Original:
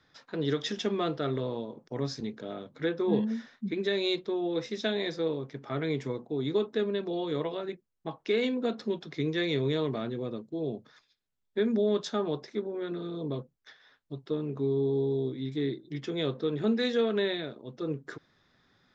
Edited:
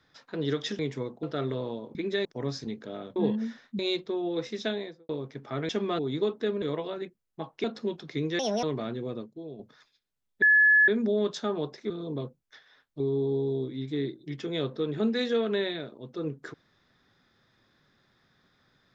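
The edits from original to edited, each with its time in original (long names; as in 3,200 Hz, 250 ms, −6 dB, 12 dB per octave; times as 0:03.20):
0:00.79–0:01.09: swap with 0:05.88–0:06.32
0:02.72–0:03.05: remove
0:03.68–0:03.98: move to 0:01.81
0:04.82–0:05.28: fade out and dull
0:06.95–0:07.29: remove
0:08.31–0:08.67: remove
0:09.42–0:09.79: play speed 154%
0:10.35–0:10.75: fade out quadratic, to −10 dB
0:11.58: insert tone 1,710 Hz −16 dBFS 0.46 s
0:12.60–0:13.04: remove
0:14.14–0:14.64: remove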